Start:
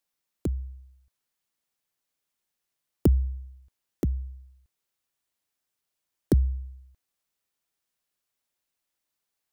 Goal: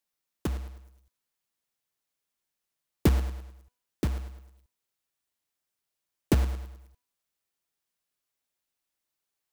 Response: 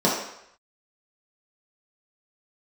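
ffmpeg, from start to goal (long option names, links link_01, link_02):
-af "acrusher=bits=2:mode=log:mix=0:aa=0.000001,bandreject=frequency=246.2:width_type=h:width=4,bandreject=frequency=492.4:width_type=h:width=4,bandreject=frequency=738.6:width_type=h:width=4,bandreject=frequency=984.8:width_type=h:width=4,bandreject=frequency=1231:width_type=h:width=4,bandreject=frequency=1477.2:width_type=h:width=4,bandreject=frequency=1723.4:width_type=h:width=4,bandreject=frequency=1969.6:width_type=h:width=4,bandreject=frequency=2215.8:width_type=h:width=4,bandreject=frequency=2462:width_type=h:width=4,bandreject=frequency=2708.2:width_type=h:width=4,bandreject=frequency=2954.4:width_type=h:width=4,bandreject=frequency=3200.6:width_type=h:width=4,bandreject=frequency=3446.8:width_type=h:width=4,bandreject=frequency=3693:width_type=h:width=4,bandreject=frequency=3939.2:width_type=h:width=4,bandreject=frequency=4185.4:width_type=h:width=4,bandreject=frequency=4431.6:width_type=h:width=4,bandreject=frequency=4677.8:width_type=h:width=4,bandreject=frequency=4924:width_type=h:width=4,bandreject=frequency=5170.2:width_type=h:width=4,bandreject=frequency=5416.4:width_type=h:width=4,bandreject=frequency=5662.6:width_type=h:width=4,bandreject=frequency=5908.8:width_type=h:width=4,bandreject=frequency=6155:width_type=h:width=4,bandreject=frequency=6401.2:width_type=h:width=4,bandreject=frequency=6647.4:width_type=h:width=4,bandreject=frequency=6893.6:width_type=h:width=4,bandreject=frequency=7139.8:width_type=h:width=4,bandreject=frequency=7386:width_type=h:width=4,bandreject=frequency=7632.2:width_type=h:width=4,bandreject=frequency=7878.4:width_type=h:width=4,bandreject=frequency=8124.6:width_type=h:width=4,volume=-2.5dB"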